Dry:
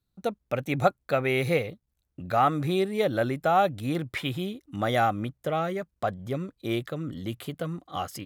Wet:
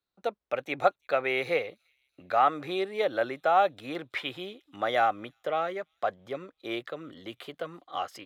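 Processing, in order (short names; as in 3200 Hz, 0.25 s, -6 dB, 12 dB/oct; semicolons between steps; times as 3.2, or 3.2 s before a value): three-band isolator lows -20 dB, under 360 Hz, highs -14 dB, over 4900 Hz; on a send: thin delay 0.333 s, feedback 49%, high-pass 5300 Hz, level -22.5 dB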